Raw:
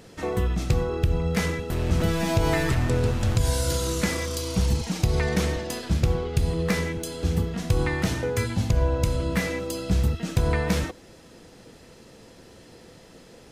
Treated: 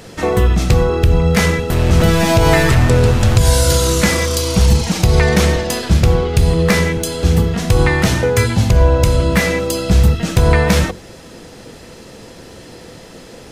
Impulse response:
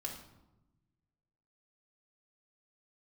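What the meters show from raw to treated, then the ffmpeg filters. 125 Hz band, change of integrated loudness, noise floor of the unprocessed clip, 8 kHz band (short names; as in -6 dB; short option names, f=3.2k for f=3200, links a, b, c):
+11.5 dB, +11.5 dB, -50 dBFS, +12.5 dB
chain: -af "apsyclip=15.5dB,adynamicequalizer=threshold=0.0282:dfrequency=290:dqfactor=4.3:tfrequency=290:tqfactor=4.3:attack=5:release=100:ratio=0.375:range=2.5:mode=cutabove:tftype=bell,bandreject=f=45.8:t=h:w=4,bandreject=f=91.6:t=h:w=4,bandreject=f=137.4:t=h:w=4,bandreject=f=183.2:t=h:w=4,bandreject=f=229:t=h:w=4,bandreject=f=274.8:t=h:w=4,bandreject=f=320.6:t=h:w=4,bandreject=f=366.4:t=h:w=4,bandreject=f=412.2:t=h:w=4,bandreject=f=458:t=h:w=4,volume=-3dB"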